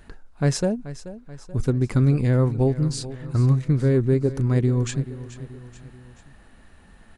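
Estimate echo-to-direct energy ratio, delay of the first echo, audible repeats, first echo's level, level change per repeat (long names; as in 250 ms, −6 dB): −13.5 dB, 432 ms, 3, −15.0 dB, −5.5 dB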